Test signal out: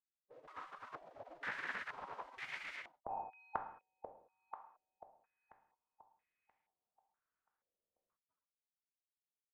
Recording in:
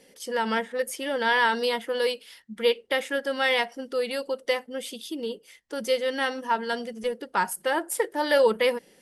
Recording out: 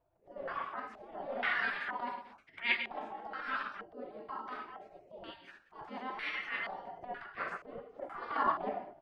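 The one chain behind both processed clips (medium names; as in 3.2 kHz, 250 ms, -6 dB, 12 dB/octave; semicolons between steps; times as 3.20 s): gated-style reverb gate 240 ms falling, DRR 5 dB; transient shaper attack -11 dB, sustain +3 dB; spectral gate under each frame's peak -20 dB weak; step-sequenced low-pass 2.1 Hz 530–2100 Hz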